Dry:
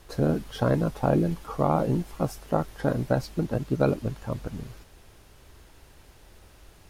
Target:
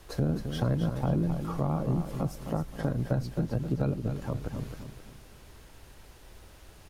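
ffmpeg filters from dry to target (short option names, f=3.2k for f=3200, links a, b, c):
-filter_complex "[0:a]acrossover=split=200[a][b];[b]acompressor=threshold=-36dB:ratio=2.5[c];[a][c]amix=inputs=2:normalize=0,aecho=1:1:264|528|792|1056:0.398|0.147|0.0545|0.0202"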